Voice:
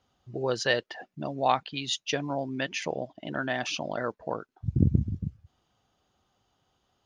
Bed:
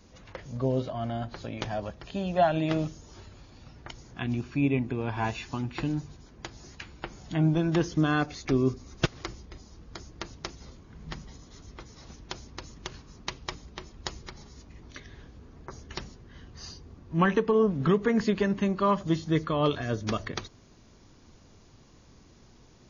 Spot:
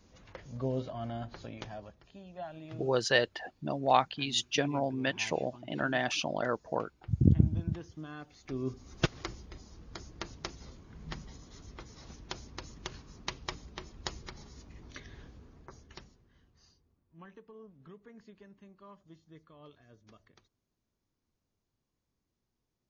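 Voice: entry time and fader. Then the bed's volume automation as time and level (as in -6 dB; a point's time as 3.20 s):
2.45 s, -0.5 dB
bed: 1.42 s -6 dB
2.24 s -19.5 dB
8.26 s -19.5 dB
8.97 s -2.5 dB
15.27 s -2.5 dB
17.16 s -29 dB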